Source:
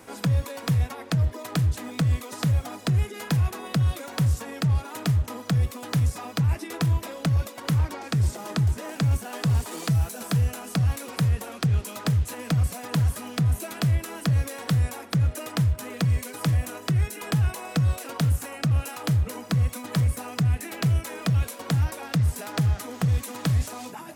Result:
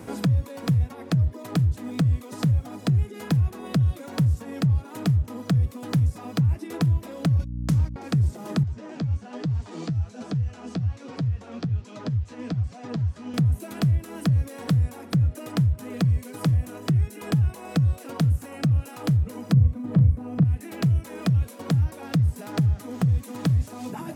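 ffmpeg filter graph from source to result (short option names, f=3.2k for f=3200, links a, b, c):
-filter_complex "[0:a]asettb=1/sr,asplit=3[a][b][c];[a]atrim=end=7.394[d];[b]atrim=start=7.39:end=7.96,asetpts=PTS-STARTPTS,afade=t=in:d=0.004:c=qsin,afade=t=out:st=0.566:d=0.004:c=qsin,agate=range=-46dB:threshold=-31dB:ratio=16:release=100:detection=peak,equalizer=f=6k:w=0.75:g=10,aeval=exprs='val(0)+0.02*(sin(2*PI*60*n/s)+sin(2*PI*2*60*n/s)/2+sin(2*PI*3*60*n/s)/3+sin(2*PI*4*60*n/s)/4+sin(2*PI*5*60*n/s)/5)':c=same[e];[c]atrim=start=7.956[f];[d][e]acrossfade=d=0.004:c1=hsin:c2=qsin[g];[g][f]acrossfade=d=0.004:c1=qsin:c2=hsin,asettb=1/sr,asplit=3[h][i][j];[h]atrim=end=8.634[k];[i]atrim=start=8.63:end=13.34,asetpts=PTS-STARTPTS,afade=t=in:d=0.004:c=qsin,afade=t=out:st=4.706:d=0.004:c=qsin,lowpass=f=6.5k:w=0.5412,lowpass=f=6.5k:w=1.3066,flanger=delay=6.3:depth=6.9:regen=41:speed=1.2:shape=triangular,acrossover=split=90|650[l][m][n];[l]acompressor=threshold=-29dB:ratio=4[o];[m]acompressor=threshold=-37dB:ratio=4[p];[n]acompressor=threshold=-42dB:ratio=4[q];[o][p][q]amix=inputs=3:normalize=0[r];[j]atrim=start=13.336[s];[k][r]acrossfade=d=0.004:c1=hsin:c2=qsin[t];[t][s]acrossfade=d=0.004:c1=qsin:c2=hsin,asettb=1/sr,asplit=3[u][v][w];[u]atrim=end=19.534[x];[v]atrim=start=19.53:end=20.44,asetpts=PTS-STARTPTS,afade=t=in:d=0.004:c=qsin,afade=t=out:st=0.906:d=0.004:c=qsin,acrossover=split=3400[y][z];[z]acompressor=threshold=-49dB:ratio=4:attack=1:release=60[aa];[y][aa]amix=inputs=2:normalize=0,tiltshelf=f=890:g=7,asplit=2[ab][ac];[ac]adelay=37,volume=-6.5dB[ad];[ab][ad]amix=inputs=2:normalize=0,atrim=end_sample=40131[ae];[w]atrim=start=20.436[af];[x][ae]acrossfade=d=0.004:c1=hsin:c2=qsin[ag];[ag][af]acrossfade=d=0.004:c1=qsin:c2=hsin,equalizer=f=120:w=0.3:g=14,acompressor=threshold=-29dB:ratio=2"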